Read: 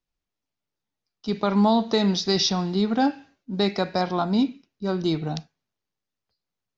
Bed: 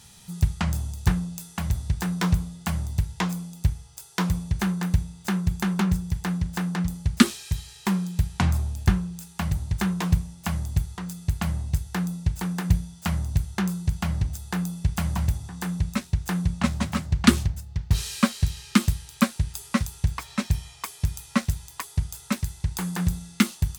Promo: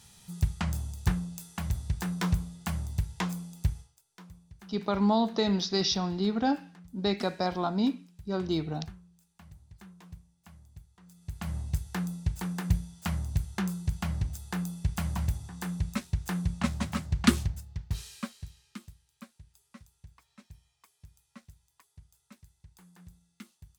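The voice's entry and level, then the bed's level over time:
3.45 s, −5.5 dB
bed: 0:03.80 −5.5 dB
0:04.02 −26 dB
0:10.93 −26 dB
0:11.57 −5.5 dB
0:17.58 −5.5 dB
0:18.95 −28 dB

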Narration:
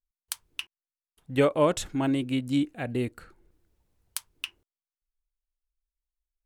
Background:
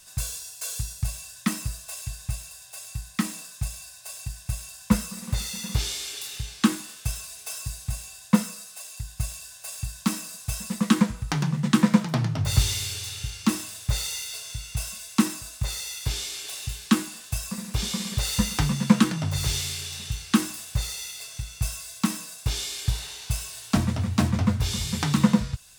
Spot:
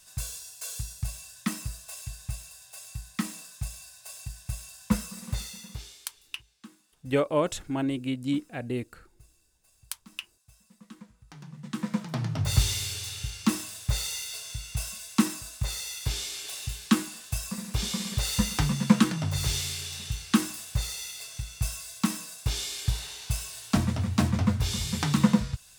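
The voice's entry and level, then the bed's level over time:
5.75 s, −2.5 dB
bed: 0:05.35 −4.5 dB
0:06.34 −28 dB
0:11.03 −28 dB
0:12.40 −2 dB

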